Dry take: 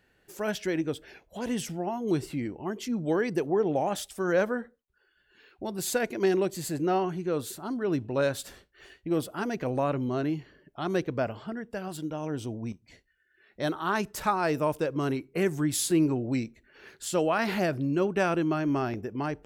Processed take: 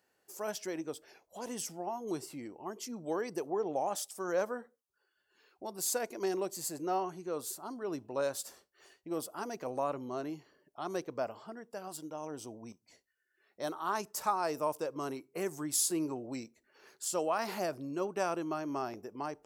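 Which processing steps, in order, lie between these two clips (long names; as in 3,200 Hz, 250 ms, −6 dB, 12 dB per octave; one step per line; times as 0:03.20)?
high-pass filter 1,000 Hz 6 dB per octave
flat-topped bell 2,400 Hz −10 dB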